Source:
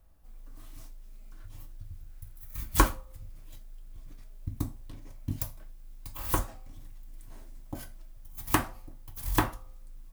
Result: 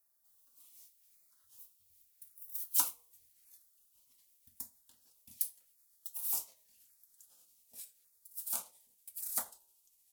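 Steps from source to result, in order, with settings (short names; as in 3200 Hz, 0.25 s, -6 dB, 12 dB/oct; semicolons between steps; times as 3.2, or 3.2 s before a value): gliding pitch shift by -5.5 st starting unshifted; differentiator; LFO notch saw down 0.87 Hz 990–3300 Hz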